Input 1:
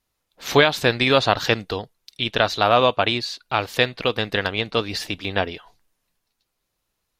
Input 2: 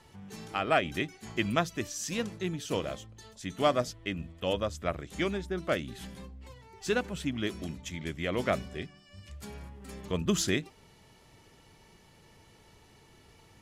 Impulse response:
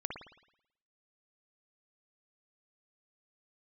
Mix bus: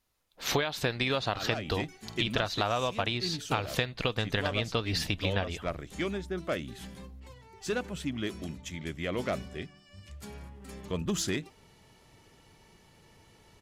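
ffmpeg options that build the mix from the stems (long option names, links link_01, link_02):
-filter_complex "[0:a]asubboost=boost=2.5:cutoff=180,volume=-1.5dB[link_01];[1:a]aeval=exprs='0.266*sin(PI/2*2*val(0)/0.266)':channel_layout=same,adelay=800,volume=-10.5dB[link_02];[link_01][link_02]amix=inputs=2:normalize=0,acompressor=threshold=-25dB:ratio=12"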